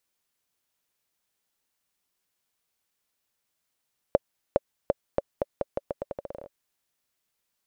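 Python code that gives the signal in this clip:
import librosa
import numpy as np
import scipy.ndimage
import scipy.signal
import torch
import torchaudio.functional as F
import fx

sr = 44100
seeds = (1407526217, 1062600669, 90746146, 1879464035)

y = fx.bouncing_ball(sr, first_gap_s=0.41, ratio=0.83, hz=563.0, decay_ms=29.0, level_db=-6.0)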